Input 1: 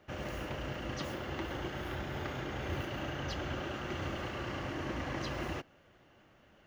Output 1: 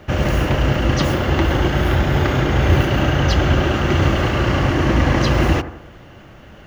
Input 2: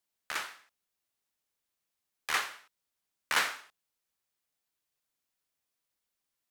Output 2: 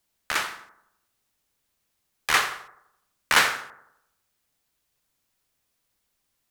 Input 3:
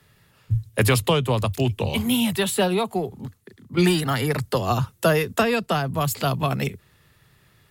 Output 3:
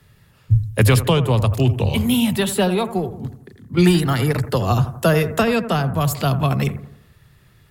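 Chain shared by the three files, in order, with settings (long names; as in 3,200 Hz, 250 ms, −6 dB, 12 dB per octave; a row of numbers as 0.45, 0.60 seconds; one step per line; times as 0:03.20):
low-shelf EQ 160 Hz +9 dB
bucket-brigade delay 84 ms, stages 1,024, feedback 48%, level −12.5 dB
normalise the peak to −3 dBFS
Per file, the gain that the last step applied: +18.5, +9.0, +1.0 decibels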